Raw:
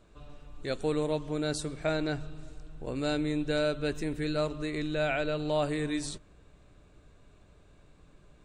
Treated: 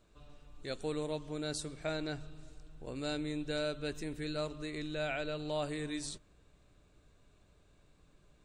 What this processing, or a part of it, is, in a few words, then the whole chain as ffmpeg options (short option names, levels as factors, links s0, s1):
presence and air boost: -af "equalizer=f=4700:t=o:w=1.7:g=3.5,highshelf=f=9500:g=6.5,volume=0.422"